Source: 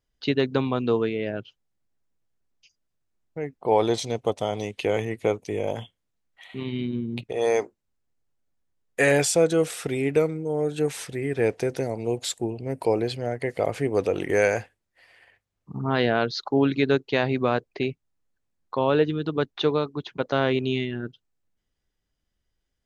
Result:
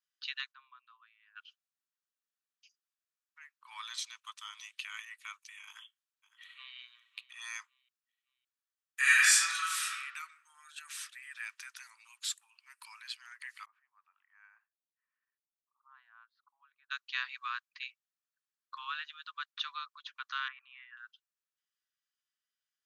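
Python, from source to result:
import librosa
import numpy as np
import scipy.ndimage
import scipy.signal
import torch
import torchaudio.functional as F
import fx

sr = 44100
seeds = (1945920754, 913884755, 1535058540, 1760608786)

y = fx.bandpass_q(x, sr, hz=220.0, q=1.1, at=(0.51, 1.35), fade=0.02)
y = fx.echo_throw(y, sr, start_s=5.66, length_s=1.1, ms=560, feedback_pct=35, wet_db=-17.5)
y = fx.reverb_throw(y, sr, start_s=9.0, length_s=0.9, rt60_s=1.1, drr_db=-9.5)
y = fx.cheby1_bandpass(y, sr, low_hz=150.0, high_hz=510.0, order=2, at=(13.64, 16.9), fade=0.02)
y = fx.lowpass(y, sr, hz=1800.0, slope=24, at=(20.48, 20.97))
y = scipy.signal.sosfilt(scipy.signal.butter(12, 1100.0, 'highpass', fs=sr, output='sos'), y)
y = fx.notch(y, sr, hz=2100.0, q=12.0)
y = y * 10.0 ** (-6.0 / 20.0)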